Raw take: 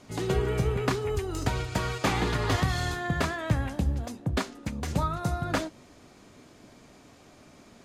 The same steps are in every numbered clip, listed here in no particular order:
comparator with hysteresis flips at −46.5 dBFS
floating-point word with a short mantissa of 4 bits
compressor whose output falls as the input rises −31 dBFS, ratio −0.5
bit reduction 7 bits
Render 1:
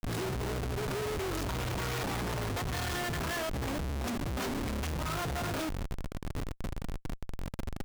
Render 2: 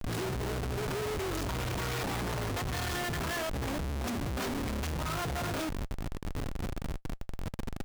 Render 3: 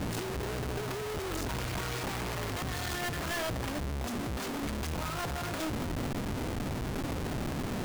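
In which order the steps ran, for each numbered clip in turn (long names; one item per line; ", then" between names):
compressor whose output falls as the input rises, then floating-point word with a short mantissa, then bit reduction, then comparator with hysteresis
compressor whose output falls as the input rises, then bit reduction, then comparator with hysteresis, then floating-point word with a short mantissa
compressor whose output falls as the input rises, then comparator with hysteresis, then bit reduction, then floating-point word with a short mantissa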